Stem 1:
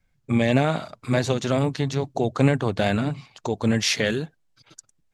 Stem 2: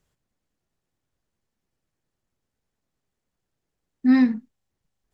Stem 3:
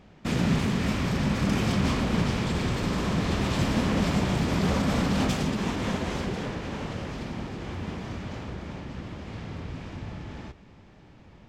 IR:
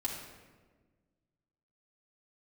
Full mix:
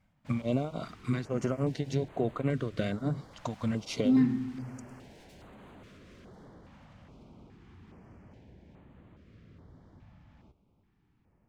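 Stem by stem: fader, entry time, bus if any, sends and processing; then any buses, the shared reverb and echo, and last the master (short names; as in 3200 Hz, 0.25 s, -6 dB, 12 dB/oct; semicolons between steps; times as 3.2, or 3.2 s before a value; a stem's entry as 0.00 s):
+2.0 dB, 0.00 s, bus A, no send, beating tremolo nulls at 3.5 Hz
-8.5 dB, 0.00 s, bus A, send -8 dB, octaver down 1 oct, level -3 dB
-17.5 dB, 0.00 s, no bus, no send, wavefolder -28.5 dBFS
bus A: 0.0 dB, notch comb 840 Hz; compressor 6:1, threshold -25 dBFS, peak gain reduction 12 dB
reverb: on, RT60 1.4 s, pre-delay 3 ms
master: high shelf 2600 Hz -8.5 dB; stepped notch 2.4 Hz 400–5400 Hz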